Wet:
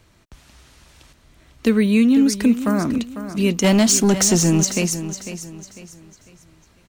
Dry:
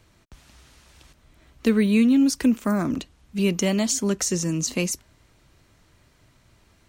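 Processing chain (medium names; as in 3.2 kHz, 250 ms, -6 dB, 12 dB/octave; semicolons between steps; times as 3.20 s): 3.64–4.65 s: waveshaping leveller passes 2; feedback delay 499 ms, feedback 35%, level -11.5 dB; trim +3 dB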